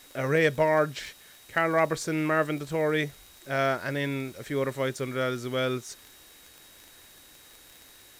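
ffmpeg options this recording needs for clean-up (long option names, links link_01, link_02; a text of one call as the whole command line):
ffmpeg -i in.wav -af "adeclick=threshold=4,bandreject=frequency=3800:width=30,afftdn=noise_reduction=20:noise_floor=-53" out.wav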